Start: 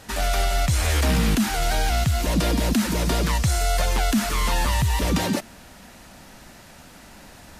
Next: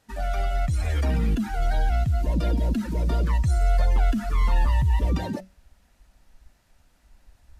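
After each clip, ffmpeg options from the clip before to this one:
ffmpeg -i in.wav -af "bandreject=frequency=188.3:width_type=h:width=4,bandreject=frequency=376.6:width_type=h:width=4,bandreject=frequency=564.9:width_type=h:width=4,bandreject=frequency=753.2:width_type=h:width=4,bandreject=frequency=941.5:width_type=h:width=4,bandreject=frequency=1129.8:width_type=h:width=4,bandreject=frequency=1318.1:width_type=h:width=4,bandreject=frequency=1506.4:width_type=h:width=4,bandreject=frequency=1694.7:width_type=h:width=4,bandreject=frequency=1883:width_type=h:width=4,bandreject=frequency=2071.3:width_type=h:width=4,bandreject=frequency=2259.6:width_type=h:width=4,bandreject=frequency=2447.9:width_type=h:width=4,bandreject=frequency=2636.2:width_type=h:width=4,bandreject=frequency=2824.5:width_type=h:width=4,bandreject=frequency=3012.8:width_type=h:width=4,bandreject=frequency=3201.1:width_type=h:width=4,bandreject=frequency=3389.4:width_type=h:width=4,bandreject=frequency=3577.7:width_type=h:width=4,bandreject=frequency=3766:width_type=h:width=4,bandreject=frequency=3954.3:width_type=h:width=4,bandreject=frequency=4142.6:width_type=h:width=4,bandreject=frequency=4330.9:width_type=h:width=4,bandreject=frequency=4519.2:width_type=h:width=4,bandreject=frequency=4707.5:width_type=h:width=4,bandreject=frequency=4895.8:width_type=h:width=4,bandreject=frequency=5084.1:width_type=h:width=4,bandreject=frequency=5272.4:width_type=h:width=4,bandreject=frequency=5460.7:width_type=h:width=4,bandreject=frequency=5649:width_type=h:width=4,bandreject=frequency=5837.3:width_type=h:width=4,bandreject=frequency=6025.6:width_type=h:width=4,bandreject=frequency=6213.9:width_type=h:width=4,bandreject=frequency=6402.2:width_type=h:width=4,bandreject=frequency=6590.5:width_type=h:width=4,bandreject=frequency=6778.8:width_type=h:width=4,bandreject=frequency=6967.1:width_type=h:width=4,bandreject=frequency=7155.4:width_type=h:width=4,bandreject=frequency=7343.7:width_type=h:width=4,asubboost=boost=2.5:cutoff=100,afftdn=noise_reduction=16:noise_floor=-25,volume=-4dB" out.wav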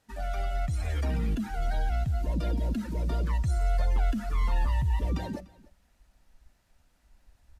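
ffmpeg -i in.wav -af "aecho=1:1:295:0.075,volume=-5.5dB" out.wav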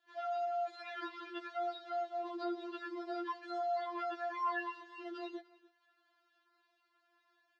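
ffmpeg -i in.wav -af "highpass=frequency=390:width=0.5412,highpass=frequency=390:width=1.3066,equalizer=frequency=480:width_type=q:width=4:gain=10,equalizer=frequency=730:width_type=q:width=4:gain=-7,equalizer=frequency=1100:width_type=q:width=4:gain=5,equalizer=frequency=1600:width_type=q:width=4:gain=3,equalizer=frequency=2400:width_type=q:width=4:gain=-5,lowpass=frequency=4100:width=0.5412,lowpass=frequency=4100:width=1.3066,afftfilt=real='re*4*eq(mod(b,16),0)':imag='im*4*eq(mod(b,16),0)':win_size=2048:overlap=0.75,volume=1.5dB" out.wav

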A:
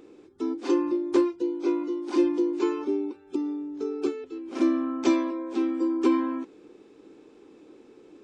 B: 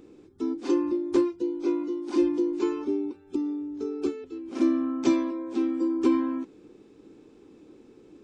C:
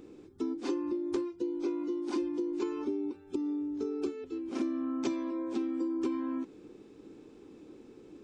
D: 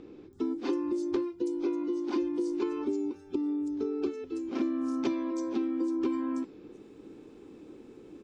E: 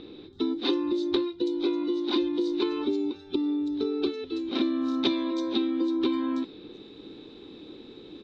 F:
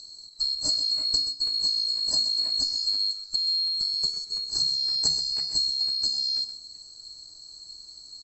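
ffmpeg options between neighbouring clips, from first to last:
ffmpeg -i in.wav -af "bass=frequency=250:gain=11,treble=frequency=4000:gain=3,volume=-3.5dB" out.wav
ffmpeg -i in.wav -af "acompressor=threshold=-30dB:ratio=6" out.wav
ffmpeg -i in.wav -filter_complex "[0:a]acrossover=split=5600[link_01][link_02];[link_02]adelay=330[link_03];[link_01][link_03]amix=inputs=2:normalize=0,volume=2.5dB" out.wav
ffmpeg -i in.wav -af "lowpass=frequency=3800:width_type=q:width=15,volume=3.5dB" out.wav
ffmpeg -i in.wav -af "afftfilt=real='real(if(lt(b,736),b+184*(1-2*mod(floor(b/184),2)),b),0)':imag='imag(if(lt(b,736),b+184*(1-2*mod(floor(b/184),2)),b),0)':win_size=2048:overlap=0.75,aecho=1:1:129:0.266" out.wav

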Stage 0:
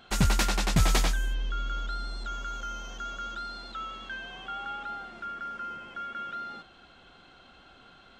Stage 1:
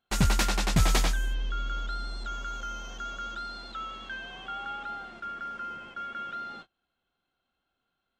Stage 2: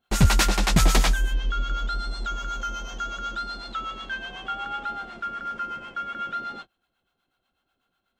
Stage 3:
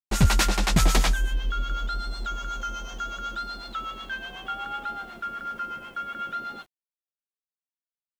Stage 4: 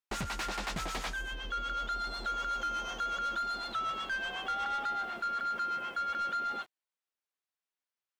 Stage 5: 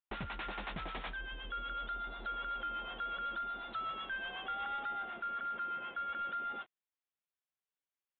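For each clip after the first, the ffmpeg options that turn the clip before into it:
ffmpeg -i in.wav -af "agate=range=-27dB:threshold=-46dB:ratio=16:detection=peak" out.wav
ffmpeg -i in.wav -filter_complex "[0:a]acrossover=split=640[link_01][link_02];[link_01]aeval=exprs='val(0)*(1-0.7/2+0.7/2*cos(2*PI*8.1*n/s))':channel_layout=same[link_03];[link_02]aeval=exprs='val(0)*(1-0.7/2-0.7/2*cos(2*PI*8.1*n/s))':channel_layout=same[link_04];[link_03][link_04]amix=inputs=2:normalize=0,volume=8.5dB" out.wav
ffmpeg -i in.wav -af "acrusher=bits=9:mix=0:aa=0.000001,volume=-1.5dB" out.wav
ffmpeg -i in.wav -filter_complex "[0:a]acompressor=threshold=-27dB:ratio=5,asplit=2[link_01][link_02];[link_02]highpass=frequency=720:poles=1,volume=20dB,asoftclip=type=tanh:threshold=-18dB[link_03];[link_01][link_03]amix=inputs=2:normalize=0,lowpass=frequency=2600:poles=1,volume=-6dB,volume=-7.5dB" out.wav
ffmpeg -i in.wav -af "aresample=8000,aresample=44100,volume=-5dB" out.wav

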